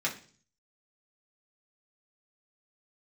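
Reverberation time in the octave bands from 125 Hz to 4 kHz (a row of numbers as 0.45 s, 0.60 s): 0.75 s, 0.60 s, 0.45 s, 0.40 s, 0.40 s, 0.50 s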